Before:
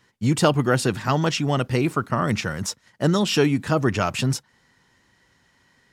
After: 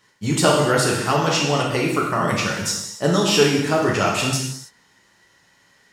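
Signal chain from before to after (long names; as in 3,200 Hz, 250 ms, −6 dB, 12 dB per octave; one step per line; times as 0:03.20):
bass and treble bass −7 dB, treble +3 dB
reverb whose tail is shaped and stops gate 340 ms falling, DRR −3 dB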